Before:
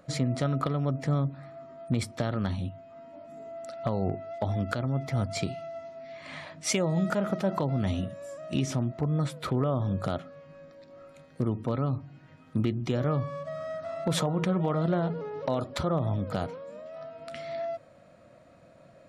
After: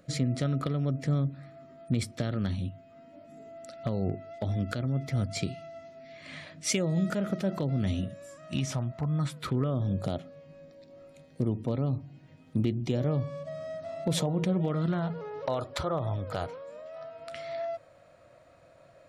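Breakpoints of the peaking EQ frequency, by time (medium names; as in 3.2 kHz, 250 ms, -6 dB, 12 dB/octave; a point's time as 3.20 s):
peaking EQ -11 dB 1 oct
8.15 s 930 Hz
8.79 s 280 Hz
10.03 s 1.3 kHz
14.57 s 1.3 kHz
15.31 s 210 Hz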